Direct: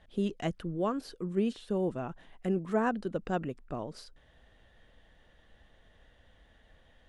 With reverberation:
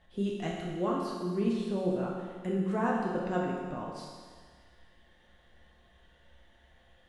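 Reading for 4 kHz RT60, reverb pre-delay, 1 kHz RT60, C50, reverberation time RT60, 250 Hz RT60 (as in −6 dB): 1.7 s, 6 ms, 1.7 s, 0.5 dB, 1.7 s, 1.7 s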